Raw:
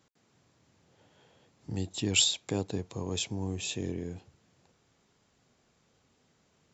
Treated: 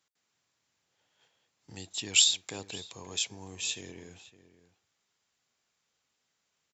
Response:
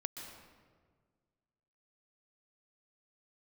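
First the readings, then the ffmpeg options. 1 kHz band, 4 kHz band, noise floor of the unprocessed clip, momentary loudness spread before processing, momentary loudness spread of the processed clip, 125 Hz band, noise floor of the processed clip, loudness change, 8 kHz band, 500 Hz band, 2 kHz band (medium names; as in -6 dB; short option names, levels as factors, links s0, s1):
-4.0 dB, +2.5 dB, -71 dBFS, 15 LU, 19 LU, -13.5 dB, -80 dBFS, +2.5 dB, no reading, -9.5 dB, +2.0 dB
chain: -filter_complex "[0:a]tiltshelf=f=750:g=-9,agate=range=0.398:threshold=0.00126:ratio=16:detection=peak,asplit=2[s0][s1];[s1]adelay=559.8,volume=0.178,highshelf=f=4000:g=-12.6[s2];[s0][s2]amix=inputs=2:normalize=0,volume=0.531"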